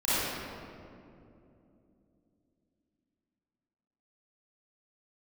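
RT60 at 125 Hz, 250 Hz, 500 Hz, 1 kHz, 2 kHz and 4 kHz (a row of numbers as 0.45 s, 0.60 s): 3.8 s, 4.3 s, 3.2 s, 2.3 s, 1.8 s, 1.3 s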